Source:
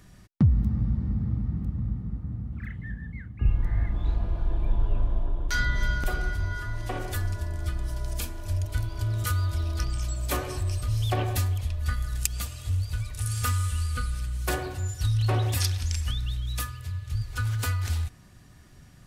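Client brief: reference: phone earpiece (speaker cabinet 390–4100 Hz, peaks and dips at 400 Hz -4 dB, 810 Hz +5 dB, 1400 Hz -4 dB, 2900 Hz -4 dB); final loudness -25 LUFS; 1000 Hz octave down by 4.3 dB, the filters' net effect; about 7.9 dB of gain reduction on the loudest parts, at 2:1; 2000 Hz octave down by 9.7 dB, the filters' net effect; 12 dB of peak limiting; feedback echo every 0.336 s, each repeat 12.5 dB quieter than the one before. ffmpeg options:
-af "equalizer=f=1k:t=o:g=-5.5,equalizer=f=2k:t=o:g=-7.5,acompressor=threshold=-31dB:ratio=2,alimiter=level_in=1dB:limit=-24dB:level=0:latency=1,volume=-1dB,highpass=390,equalizer=f=400:t=q:w=4:g=-4,equalizer=f=810:t=q:w=4:g=5,equalizer=f=1.4k:t=q:w=4:g=-4,equalizer=f=2.9k:t=q:w=4:g=-4,lowpass=f=4.1k:w=0.5412,lowpass=f=4.1k:w=1.3066,aecho=1:1:336|672|1008:0.237|0.0569|0.0137,volume=24dB"

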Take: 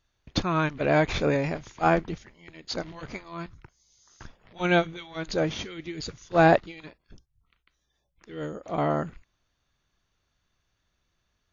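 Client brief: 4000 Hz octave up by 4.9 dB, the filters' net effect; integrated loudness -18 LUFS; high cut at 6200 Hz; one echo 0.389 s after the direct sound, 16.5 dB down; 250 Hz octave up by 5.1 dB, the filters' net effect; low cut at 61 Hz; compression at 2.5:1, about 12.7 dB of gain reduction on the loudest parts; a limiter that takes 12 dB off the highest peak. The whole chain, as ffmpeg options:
-af "highpass=61,lowpass=6.2k,equalizer=f=250:t=o:g=8,equalizer=f=4k:t=o:g=6.5,acompressor=threshold=-31dB:ratio=2.5,alimiter=level_in=4dB:limit=-24dB:level=0:latency=1,volume=-4dB,aecho=1:1:389:0.15,volume=21dB"

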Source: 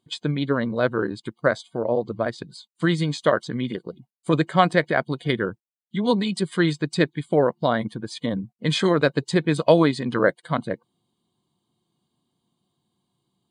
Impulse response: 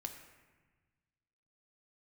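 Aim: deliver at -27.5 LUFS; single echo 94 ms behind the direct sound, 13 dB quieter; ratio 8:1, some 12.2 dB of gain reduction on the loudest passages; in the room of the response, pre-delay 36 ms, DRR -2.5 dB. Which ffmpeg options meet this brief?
-filter_complex "[0:a]acompressor=threshold=-23dB:ratio=8,aecho=1:1:94:0.224,asplit=2[a][b];[1:a]atrim=start_sample=2205,adelay=36[c];[b][c]afir=irnorm=-1:irlink=0,volume=5dB[d];[a][d]amix=inputs=2:normalize=0,volume=-2.5dB"

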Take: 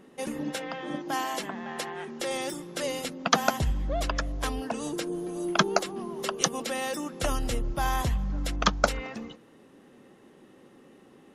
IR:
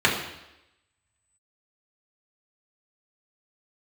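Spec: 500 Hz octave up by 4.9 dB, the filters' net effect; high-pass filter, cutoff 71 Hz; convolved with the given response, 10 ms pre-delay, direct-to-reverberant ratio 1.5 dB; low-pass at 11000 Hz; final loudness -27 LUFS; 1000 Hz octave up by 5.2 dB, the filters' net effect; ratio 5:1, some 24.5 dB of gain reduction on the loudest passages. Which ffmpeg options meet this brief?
-filter_complex "[0:a]highpass=71,lowpass=11k,equalizer=f=500:t=o:g=4.5,equalizer=f=1k:t=o:g=5.5,acompressor=threshold=-42dB:ratio=5,asplit=2[a][b];[1:a]atrim=start_sample=2205,adelay=10[c];[b][c]afir=irnorm=-1:irlink=0,volume=-20dB[d];[a][d]amix=inputs=2:normalize=0,volume=15.5dB"

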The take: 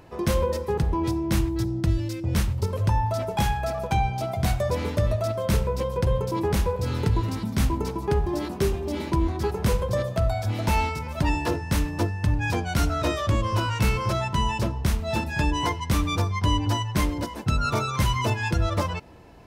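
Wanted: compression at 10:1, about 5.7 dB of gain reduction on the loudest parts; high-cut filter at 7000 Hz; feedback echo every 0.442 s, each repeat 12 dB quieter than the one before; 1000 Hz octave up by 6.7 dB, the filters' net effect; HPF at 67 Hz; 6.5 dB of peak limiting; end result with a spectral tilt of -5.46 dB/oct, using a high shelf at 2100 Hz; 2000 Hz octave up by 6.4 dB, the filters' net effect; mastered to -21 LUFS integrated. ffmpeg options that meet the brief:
-af "highpass=67,lowpass=7k,equalizer=f=1k:t=o:g=6,equalizer=f=2k:t=o:g=3.5,highshelf=f=2.1k:g=5,acompressor=threshold=-22dB:ratio=10,alimiter=limit=-19dB:level=0:latency=1,aecho=1:1:442|884|1326:0.251|0.0628|0.0157,volume=7dB"

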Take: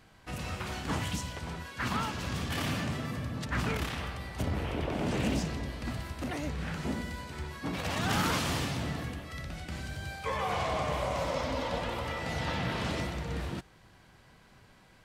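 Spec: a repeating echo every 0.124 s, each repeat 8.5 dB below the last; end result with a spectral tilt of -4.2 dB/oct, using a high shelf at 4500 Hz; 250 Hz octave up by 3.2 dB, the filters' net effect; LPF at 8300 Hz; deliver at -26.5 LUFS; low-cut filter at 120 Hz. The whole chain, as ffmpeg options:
-af "highpass=120,lowpass=8.3k,equalizer=f=250:t=o:g=4.5,highshelf=f=4.5k:g=8.5,aecho=1:1:124|248|372|496:0.376|0.143|0.0543|0.0206,volume=5.5dB"

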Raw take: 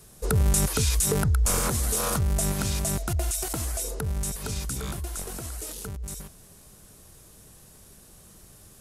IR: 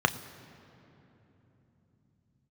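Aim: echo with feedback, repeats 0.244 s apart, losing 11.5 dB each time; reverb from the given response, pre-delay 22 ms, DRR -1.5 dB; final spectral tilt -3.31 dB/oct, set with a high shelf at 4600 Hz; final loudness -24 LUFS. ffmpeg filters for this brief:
-filter_complex "[0:a]highshelf=f=4.6k:g=8,aecho=1:1:244|488|732:0.266|0.0718|0.0194,asplit=2[a][b];[1:a]atrim=start_sample=2205,adelay=22[c];[b][c]afir=irnorm=-1:irlink=0,volume=-11.5dB[d];[a][d]amix=inputs=2:normalize=0,volume=-3dB"

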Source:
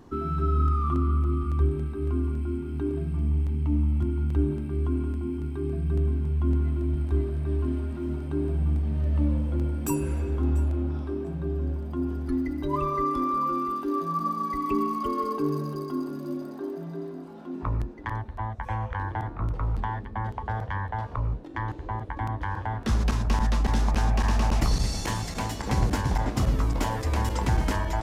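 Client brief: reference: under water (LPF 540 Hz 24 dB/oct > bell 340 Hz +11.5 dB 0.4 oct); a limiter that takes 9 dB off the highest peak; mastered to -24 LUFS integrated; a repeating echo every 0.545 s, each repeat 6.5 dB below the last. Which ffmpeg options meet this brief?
-af "alimiter=limit=-20dB:level=0:latency=1,lowpass=f=540:w=0.5412,lowpass=f=540:w=1.3066,equalizer=f=340:t=o:w=0.4:g=11.5,aecho=1:1:545|1090|1635|2180|2725|3270:0.473|0.222|0.105|0.0491|0.0231|0.0109,volume=2.5dB"

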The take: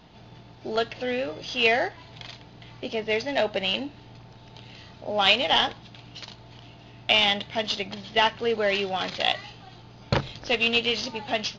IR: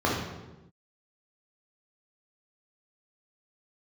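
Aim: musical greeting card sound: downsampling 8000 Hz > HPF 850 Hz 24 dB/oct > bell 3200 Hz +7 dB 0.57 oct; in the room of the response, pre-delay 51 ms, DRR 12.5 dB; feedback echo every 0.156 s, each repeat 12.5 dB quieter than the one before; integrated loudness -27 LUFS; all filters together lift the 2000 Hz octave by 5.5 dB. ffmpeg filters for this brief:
-filter_complex "[0:a]equalizer=f=2k:t=o:g=4,aecho=1:1:156|312|468:0.237|0.0569|0.0137,asplit=2[a][b];[1:a]atrim=start_sample=2205,adelay=51[c];[b][c]afir=irnorm=-1:irlink=0,volume=-27.5dB[d];[a][d]amix=inputs=2:normalize=0,aresample=8000,aresample=44100,highpass=f=850:w=0.5412,highpass=f=850:w=1.3066,equalizer=f=3.2k:t=o:w=0.57:g=7,volume=-7.5dB"

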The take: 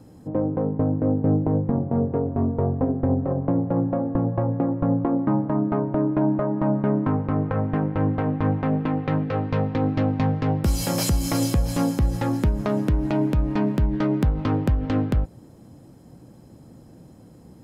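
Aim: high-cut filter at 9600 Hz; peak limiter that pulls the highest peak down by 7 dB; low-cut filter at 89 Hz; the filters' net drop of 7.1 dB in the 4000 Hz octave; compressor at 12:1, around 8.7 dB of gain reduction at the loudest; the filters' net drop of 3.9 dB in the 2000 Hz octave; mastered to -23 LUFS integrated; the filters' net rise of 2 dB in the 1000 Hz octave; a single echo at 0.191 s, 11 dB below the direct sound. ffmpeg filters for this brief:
-af "highpass=89,lowpass=9.6k,equalizer=f=1k:t=o:g=4,equalizer=f=2k:t=o:g=-5,equalizer=f=4k:t=o:g=-8.5,acompressor=threshold=-26dB:ratio=12,alimiter=limit=-21.5dB:level=0:latency=1,aecho=1:1:191:0.282,volume=9dB"

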